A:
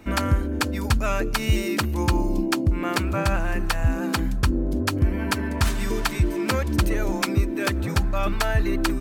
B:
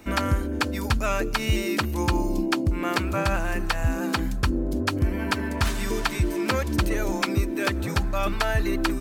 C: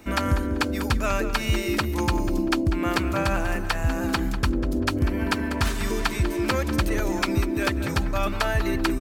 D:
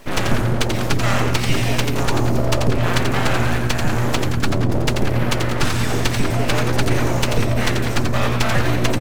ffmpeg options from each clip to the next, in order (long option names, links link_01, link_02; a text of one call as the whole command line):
ffmpeg -i in.wav -filter_complex "[0:a]acrossover=split=4400[link_01][link_02];[link_02]acompressor=threshold=-40dB:ratio=4:attack=1:release=60[link_03];[link_01][link_03]amix=inputs=2:normalize=0,bass=frequency=250:gain=-3,treble=frequency=4000:gain=5" out.wav
ffmpeg -i in.wav -filter_complex "[0:a]asplit=2[link_01][link_02];[link_02]adelay=194,lowpass=frequency=3600:poles=1,volume=-10dB,asplit=2[link_03][link_04];[link_04]adelay=194,lowpass=frequency=3600:poles=1,volume=0.34,asplit=2[link_05][link_06];[link_06]adelay=194,lowpass=frequency=3600:poles=1,volume=0.34,asplit=2[link_07][link_08];[link_08]adelay=194,lowpass=frequency=3600:poles=1,volume=0.34[link_09];[link_01][link_03][link_05][link_07][link_09]amix=inputs=5:normalize=0" out.wav
ffmpeg -i in.wav -filter_complex "[0:a]acrossover=split=9300[link_01][link_02];[link_02]acompressor=threshold=-48dB:ratio=4:attack=1:release=60[link_03];[link_01][link_03]amix=inputs=2:normalize=0,aeval=exprs='abs(val(0))':channel_layout=same,asplit=5[link_04][link_05][link_06][link_07][link_08];[link_05]adelay=87,afreqshift=-120,volume=-5dB[link_09];[link_06]adelay=174,afreqshift=-240,volume=-13.9dB[link_10];[link_07]adelay=261,afreqshift=-360,volume=-22.7dB[link_11];[link_08]adelay=348,afreqshift=-480,volume=-31.6dB[link_12];[link_04][link_09][link_10][link_11][link_12]amix=inputs=5:normalize=0,volume=6dB" out.wav